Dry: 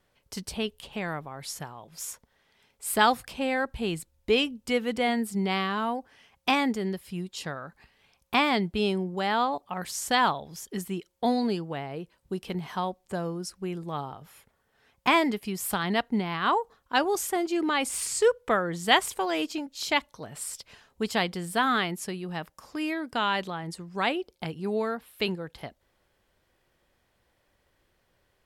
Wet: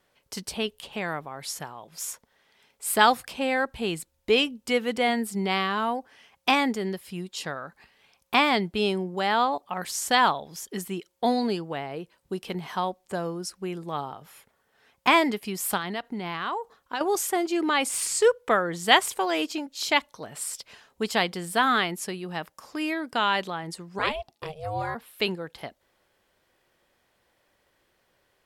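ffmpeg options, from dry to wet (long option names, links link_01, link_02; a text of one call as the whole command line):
ffmpeg -i in.wav -filter_complex "[0:a]asettb=1/sr,asplit=3[link_01][link_02][link_03];[link_01]atrim=end=15.774[link_04];[link_02]atrim=start=15.77:end=17.01,asetpts=PTS-STARTPTS,afade=type=in:duration=0.004:curve=qsin,afade=type=out:start_time=1.236:duration=0.004:curve=qsin,acompressor=threshold=-29dB:ratio=6:attack=3.2:release=140:knee=1:detection=peak[link_05];[link_03]atrim=start=17.006[link_06];[link_04][link_05]acrossfade=duration=0.004:curve1=hsin:curve2=qsin[link_07];[link_07][link_06]acrossfade=duration=0.004:curve1=qsin:curve2=hsin,asplit=3[link_08][link_09][link_10];[link_08]afade=type=out:start_time=23.98:duration=0.02[link_11];[link_09]aeval=exprs='val(0)*sin(2*PI*310*n/s)':channel_layout=same,afade=type=in:start_time=23.98:duration=0.02,afade=type=out:start_time=24.94:duration=0.02[link_12];[link_10]afade=type=in:start_time=24.94:duration=0.02[link_13];[link_11][link_12][link_13]amix=inputs=3:normalize=0,lowshelf=frequency=140:gain=-11.5,volume=3dB" out.wav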